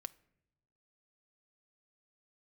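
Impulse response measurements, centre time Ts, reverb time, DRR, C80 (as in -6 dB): 2 ms, not exponential, 9.5 dB, 24.5 dB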